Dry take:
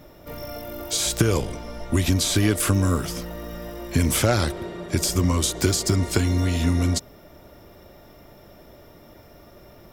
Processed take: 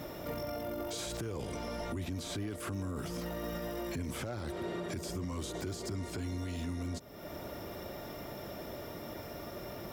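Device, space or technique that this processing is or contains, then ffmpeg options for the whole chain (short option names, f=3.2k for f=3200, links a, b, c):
podcast mastering chain: -af "highpass=f=100:p=1,deesser=0.85,acompressor=threshold=-42dB:ratio=3,alimiter=level_in=11.5dB:limit=-24dB:level=0:latency=1:release=15,volume=-11.5dB,volume=6dB" -ar 44100 -c:a libmp3lame -b:a 128k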